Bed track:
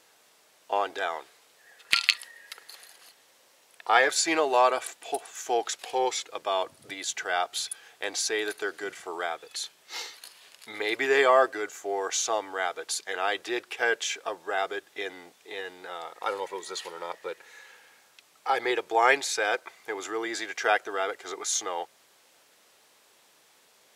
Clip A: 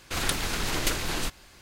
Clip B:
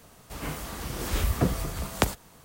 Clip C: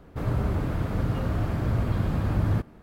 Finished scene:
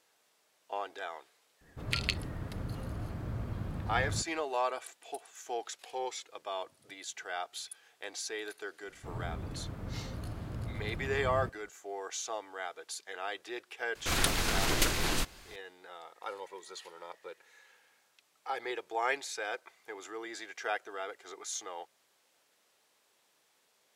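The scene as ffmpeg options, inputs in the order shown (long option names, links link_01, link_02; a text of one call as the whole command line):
ffmpeg -i bed.wav -i cue0.wav -i cue1.wav -i cue2.wav -filter_complex "[3:a]asplit=2[link_01][link_02];[0:a]volume=-10.5dB[link_03];[link_01]atrim=end=2.82,asetpts=PTS-STARTPTS,volume=-12.5dB,afade=type=in:duration=0.004:curve=hsin,afade=type=out:start_time=2.816:duration=0.004:curve=hsin,adelay=1610[link_04];[link_02]atrim=end=2.82,asetpts=PTS-STARTPTS,volume=-14dB,afade=type=in:duration=0.004:curve=hsin,afade=type=out:start_time=2.816:duration=0.004:curve=hsin,adelay=8880[link_05];[1:a]atrim=end=1.61,asetpts=PTS-STARTPTS,volume=-1dB,afade=type=in:duration=0.004:curve=hsin,afade=type=out:start_time=1.606:duration=0.004:curve=hsin,adelay=13950[link_06];[link_03][link_04][link_05][link_06]amix=inputs=4:normalize=0" out.wav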